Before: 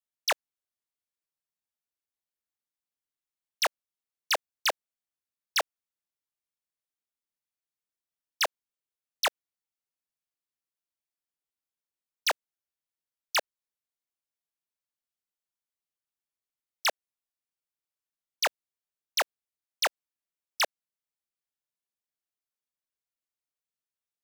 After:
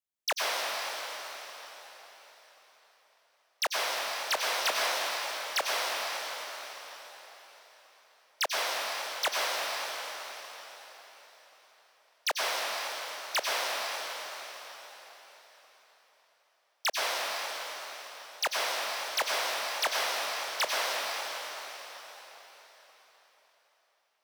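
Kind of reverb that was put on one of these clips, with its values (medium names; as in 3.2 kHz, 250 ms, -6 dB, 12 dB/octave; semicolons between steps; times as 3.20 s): plate-style reverb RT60 4.5 s, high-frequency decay 0.95×, pre-delay 80 ms, DRR -5.5 dB; trim -3.5 dB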